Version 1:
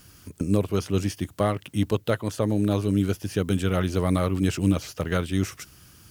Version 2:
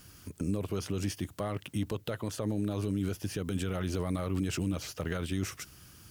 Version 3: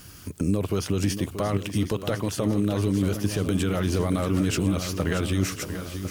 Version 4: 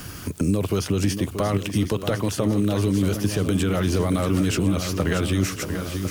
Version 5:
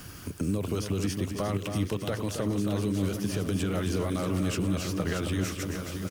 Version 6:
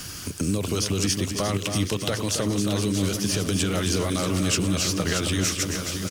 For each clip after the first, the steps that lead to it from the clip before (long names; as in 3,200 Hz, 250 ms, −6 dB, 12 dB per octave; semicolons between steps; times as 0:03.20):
brickwall limiter −20 dBFS, peak gain reduction 11 dB; level −2.5 dB
feedback echo with a long and a short gap by turns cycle 1,052 ms, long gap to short 1.5 to 1, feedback 40%, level −10 dB; level +8 dB
bit reduction 10 bits; multiband upward and downward compressor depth 40%; level +2.5 dB
single-tap delay 270 ms −7 dB; level −7.5 dB
parametric band 5,900 Hz +11 dB 2.3 octaves; level +3.5 dB